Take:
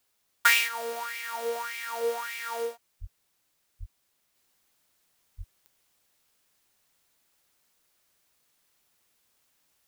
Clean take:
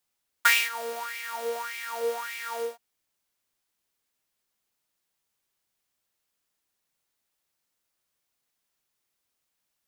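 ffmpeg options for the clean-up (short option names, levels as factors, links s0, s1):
-filter_complex "[0:a]adeclick=t=4,asplit=3[s0][s1][s2];[s0]afade=t=out:st=3:d=0.02[s3];[s1]highpass=f=140:w=0.5412,highpass=f=140:w=1.3066,afade=t=in:st=3:d=0.02,afade=t=out:st=3.12:d=0.02[s4];[s2]afade=t=in:st=3.12:d=0.02[s5];[s3][s4][s5]amix=inputs=3:normalize=0,asplit=3[s6][s7][s8];[s6]afade=t=out:st=3.79:d=0.02[s9];[s7]highpass=f=140:w=0.5412,highpass=f=140:w=1.3066,afade=t=in:st=3.79:d=0.02,afade=t=out:st=3.91:d=0.02[s10];[s8]afade=t=in:st=3.91:d=0.02[s11];[s9][s10][s11]amix=inputs=3:normalize=0,asplit=3[s12][s13][s14];[s12]afade=t=out:st=5.37:d=0.02[s15];[s13]highpass=f=140:w=0.5412,highpass=f=140:w=1.3066,afade=t=in:st=5.37:d=0.02,afade=t=out:st=5.49:d=0.02[s16];[s14]afade=t=in:st=5.49:d=0.02[s17];[s15][s16][s17]amix=inputs=3:normalize=0,agate=range=0.0891:threshold=0.000501,asetnsamples=n=441:p=0,asendcmd='4.35 volume volume -7dB',volume=1"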